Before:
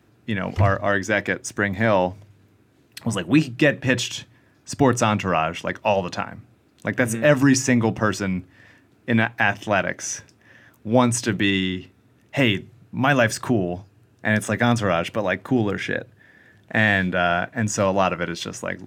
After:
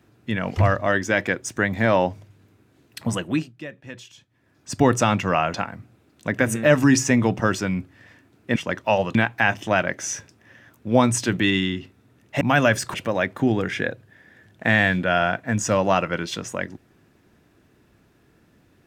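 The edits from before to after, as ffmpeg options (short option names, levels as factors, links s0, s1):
-filter_complex "[0:a]asplit=8[s0][s1][s2][s3][s4][s5][s6][s7];[s0]atrim=end=3.53,asetpts=PTS-STARTPTS,afade=t=out:st=3.11:d=0.42:silence=0.11885[s8];[s1]atrim=start=3.53:end=4.29,asetpts=PTS-STARTPTS,volume=0.119[s9];[s2]atrim=start=4.29:end=5.542,asetpts=PTS-STARTPTS,afade=t=in:d=0.42:silence=0.11885[s10];[s3]atrim=start=6.128:end=9.152[s11];[s4]atrim=start=5.538:end=6.132[s12];[s5]atrim=start=9.148:end=12.412[s13];[s6]atrim=start=12.948:end=13.482[s14];[s7]atrim=start=15.028[s15];[s8][s9][s10]concat=n=3:v=0:a=1[s16];[s16][s11]acrossfade=d=0.004:c1=hsin:c2=hsin[s17];[s17][s12]acrossfade=d=0.004:c1=hsin:c2=hsin[s18];[s18][s13]acrossfade=d=0.004:c1=hsin:c2=hsin[s19];[s19][s14]acrossfade=d=0.004:c1=hsin:c2=hsin[s20];[s20][s15]acrossfade=d=0.004:c1=hsin:c2=hsin"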